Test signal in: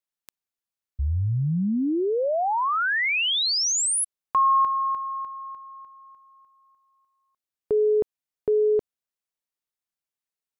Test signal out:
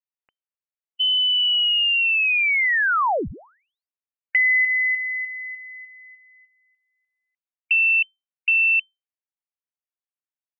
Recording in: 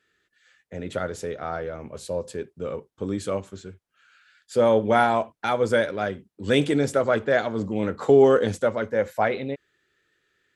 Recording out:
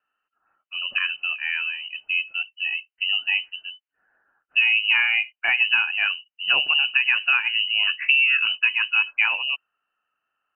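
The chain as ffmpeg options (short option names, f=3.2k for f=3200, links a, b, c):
-af "acompressor=threshold=-20dB:ratio=6:attack=26:release=244:knee=1:detection=rms,afftdn=nr=12:nf=-39,lowpass=f=2.6k:t=q:w=0.5098,lowpass=f=2.6k:t=q:w=0.6013,lowpass=f=2.6k:t=q:w=0.9,lowpass=f=2.6k:t=q:w=2.563,afreqshift=-3100,volume=4dB"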